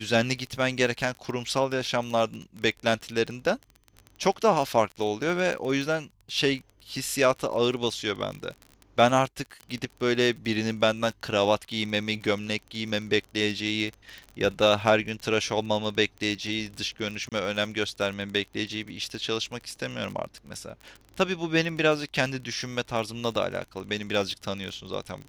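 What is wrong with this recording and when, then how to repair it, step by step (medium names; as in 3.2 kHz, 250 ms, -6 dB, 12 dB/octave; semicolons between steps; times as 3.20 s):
crackle 27 per s -32 dBFS
17.29–17.32 s: dropout 27 ms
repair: de-click; interpolate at 17.29 s, 27 ms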